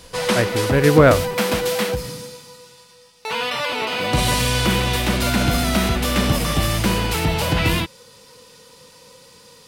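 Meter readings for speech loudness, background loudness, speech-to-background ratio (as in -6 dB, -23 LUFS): -17.0 LUFS, -20.5 LUFS, 3.5 dB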